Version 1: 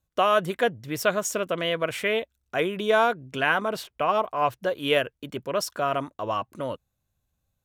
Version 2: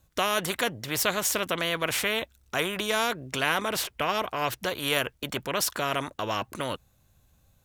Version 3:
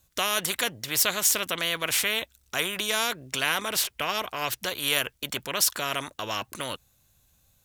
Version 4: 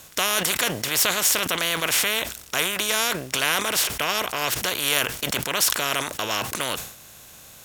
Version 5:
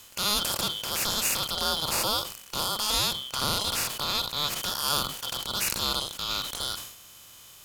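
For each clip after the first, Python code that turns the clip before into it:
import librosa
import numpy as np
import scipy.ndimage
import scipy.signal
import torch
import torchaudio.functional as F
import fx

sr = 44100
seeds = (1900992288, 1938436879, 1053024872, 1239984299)

y1 = fx.spectral_comp(x, sr, ratio=2.0)
y1 = F.gain(torch.from_numpy(y1), -1.5).numpy()
y2 = fx.high_shelf(y1, sr, hz=2100.0, db=10.5)
y2 = F.gain(torch.from_numpy(y2), -4.5).numpy()
y3 = fx.bin_compress(y2, sr, power=0.6)
y3 = fx.sustainer(y3, sr, db_per_s=88.0)
y4 = fx.band_shuffle(y3, sr, order='2413')
y4 = fx.hpss(y4, sr, part='percussive', gain_db=-12)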